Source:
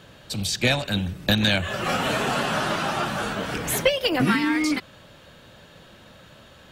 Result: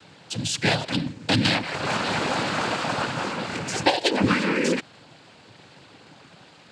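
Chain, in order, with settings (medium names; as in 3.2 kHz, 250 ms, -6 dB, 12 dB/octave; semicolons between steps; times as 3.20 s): noise-vocoded speech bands 8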